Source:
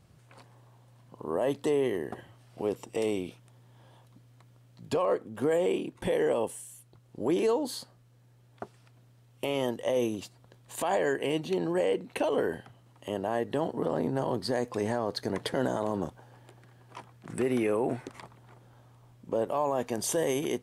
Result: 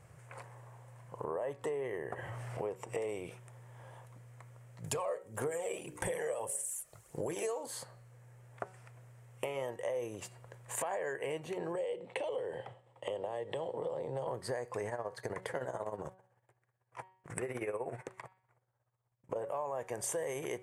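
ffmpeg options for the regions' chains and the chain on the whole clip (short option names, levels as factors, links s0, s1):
-filter_complex "[0:a]asettb=1/sr,asplit=3[s0][s1][s2];[s0]atrim=end=1.244[s3];[s1]atrim=start=1.24:end=3.09,asetpts=PTS-STARTPTS,afade=t=in:d=0.004:c=qsin,afade=t=out:st=1.846:d=0.004:c=qsin,highshelf=f=4400:g=-5.5,acompressor=mode=upward:threshold=0.0178:ratio=2.5:attack=3.2:release=140:knee=2.83:detection=peak[s4];[s2]atrim=start=3.086[s5];[s3][s4]acrossfade=d=0.004:c1=hsin:c2=qsin[s6];[s6][s5]acrossfade=d=0.004:c1=qsin:c2=hsin,asettb=1/sr,asplit=3[s7][s8][s9];[s7]atrim=end=4.844[s10];[s8]atrim=start=4.84:end=7.66,asetpts=PTS-STARTPTS,afade=t=in:d=0.004:c=qsin,afade=t=out:st=2.816:d=0.004:c=qsin,bass=f=250:g=0,treble=f=4000:g=12,bandreject=f=60:t=h:w=6,bandreject=f=120:t=h:w=6,bandreject=f=180:t=h:w=6,bandreject=f=240:t=h:w=6,bandreject=f=300:t=h:w=6,bandreject=f=360:t=h:w=6,bandreject=f=420:t=h:w=6,bandreject=f=480:t=h:w=6,bandreject=f=540:t=h:w=6,bandreject=f=600:t=h:w=6,aphaser=in_gain=1:out_gain=1:delay=1.7:decay=0.49:speed=1.7:type=sinusoidal[s11];[s9]atrim=start=7.656[s12];[s10][s11]acrossfade=d=0.004:c1=hsin:c2=qsin[s13];[s13][s12]acrossfade=d=0.004:c1=qsin:c2=hsin,asettb=1/sr,asplit=3[s14][s15][s16];[s14]atrim=end=11.754[s17];[s15]atrim=start=11.75:end=14.27,asetpts=PTS-STARTPTS,afade=t=in:d=0.004:c=qsin,afade=t=out:st=2.516:d=0.004:c=qsin,agate=range=0.0224:threshold=0.00251:ratio=3:release=100:detection=peak,acrossover=split=140|3000[s18][s19][s20];[s19]acompressor=threshold=0.0158:ratio=5:attack=3.2:release=140:knee=2.83:detection=peak[s21];[s18][s21][s20]amix=inputs=3:normalize=0,highpass=110,equalizer=f=350:t=q:w=4:g=4,equalizer=f=520:t=q:w=4:g=10,equalizer=f=850:t=q:w=4:g=5,equalizer=f=1500:t=q:w=4:g=-8,equalizer=f=3400:t=q:w=4:g=10,equalizer=f=6400:t=q:w=4:g=-9,lowpass=f=8200:w=0.5412,lowpass=f=8200:w=1.3066[s22];[s16]atrim=start=14.266[s23];[s17][s22]acrossfade=d=0.004:c1=hsin:c2=qsin[s24];[s24][s23]acrossfade=d=0.004:c1=qsin:c2=hsin,asettb=1/sr,asplit=3[s25][s26][s27];[s25]atrim=end=14.884[s28];[s26]atrim=start=14.88:end=19.36,asetpts=PTS-STARTPTS,afade=t=in:d=0.004:c=qsin,afade=t=out:st=4.476:d=0.004:c=qsin,agate=range=0.0224:threshold=0.00794:ratio=3:release=100:detection=peak,tremolo=f=16:d=0.73[s29];[s27]atrim=start=19.356[s30];[s28][s29]acrossfade=d=0.004:c1=hsin:c2=qsin[s31];[s31][s30]acrossfade=d=0.004:c1=qsin:c2=hsin,equalizer=f=125:t=o:w=1:g=7,equalizer=f=250:t=o:w=1:g=-10,equalizer=f=500:t=o:w=1:g=9,equalizer=f=1000:t=o:w=1:g=5,equalizer=f=2000:t=o:w=1:g=10,equalizer=f=4000:t=o:w=1:g=-9,equalizer=f=8000:t=o:w=1:g=9,acompressor=threshold=0.0224:ratio=6,bandreject=f=187.8:t=h:w=4,bandreject=f=375.6:t=h:w=4,bandreject=f=563.4:t=h:w=4,bandreject=f=751.2:t=h:w=4,bandreject=f=939:t=h:w=4,bandreject=f=1126.8:t=h:w=4,bandreject=f=1314.6:t=h:w=4,bandreject=f=1502.4:t=h:w=4,bandreject=f=1690.2:t=h:w=4,bandreject=f=1878:t=h:w=4,bandreject=f=2065.8:t=h:w=4,bandreject=f=2253.6:t=h:w=4,bandreject=f=2441.4:t=h:w=4,bandreject=f=2629.2:t=h:w=4,bandreject=f=2817:t=h:w=4,bandreject=f=3004.8:t=h:w=4,bandreject=f=3192.6:t=h:w=4,bandreject=f=3380.4:t=h:w=4,bandreject=f=3568.2:t=h:w=4,bandreject=f=3756:t=h:w=4,bandreject=f=3943.8:t=h:w=4,bandreject=f=4131.6:t=h:w=4,bandreject=f=4319.4:t=h:w=4,bandreject=f=4507.2:t=h:w=4,bandreject=f=4695:t=h:w=4,volume=0.794"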